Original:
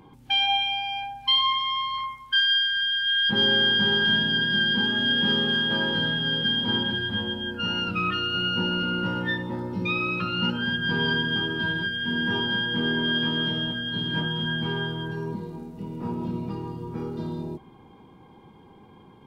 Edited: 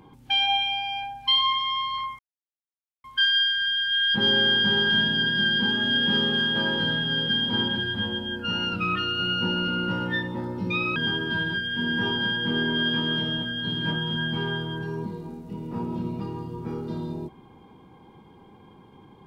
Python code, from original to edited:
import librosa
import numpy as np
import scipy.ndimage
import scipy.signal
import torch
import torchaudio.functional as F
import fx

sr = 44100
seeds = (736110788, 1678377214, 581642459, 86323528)

y = fx.edit(x, sr, fx.insert_silence(at_s=2.19, length_s=0.85),
    fx.cut(start_s=10.11, length_s=1.14), tone=tone)